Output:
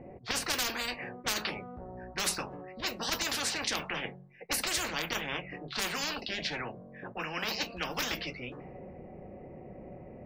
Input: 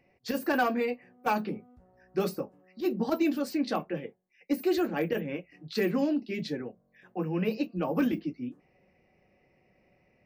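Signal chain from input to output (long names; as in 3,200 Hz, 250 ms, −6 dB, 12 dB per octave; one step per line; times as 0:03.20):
low-pass that shuts in the quiet parts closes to 750 Hz, open at −23.5 dBFS
hum removal 46.49 Hz, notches 4
every bin compressed towards the loudest bin 10 to 1
level +4 dB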